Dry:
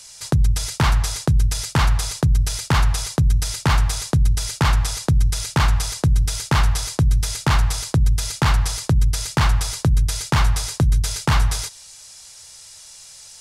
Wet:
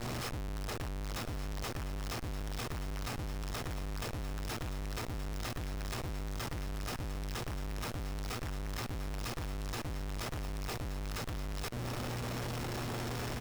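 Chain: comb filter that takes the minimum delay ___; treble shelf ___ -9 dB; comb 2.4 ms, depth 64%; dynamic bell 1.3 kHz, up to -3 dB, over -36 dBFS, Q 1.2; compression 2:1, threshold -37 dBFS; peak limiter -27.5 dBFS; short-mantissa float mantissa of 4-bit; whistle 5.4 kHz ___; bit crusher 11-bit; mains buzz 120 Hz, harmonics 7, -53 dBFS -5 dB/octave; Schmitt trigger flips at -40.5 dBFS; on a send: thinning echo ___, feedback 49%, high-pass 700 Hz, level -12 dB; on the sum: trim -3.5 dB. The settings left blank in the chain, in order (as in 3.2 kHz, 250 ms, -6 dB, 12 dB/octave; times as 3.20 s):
1.6 ms, 4.2 kHz, -46 dBFS, 1175 ms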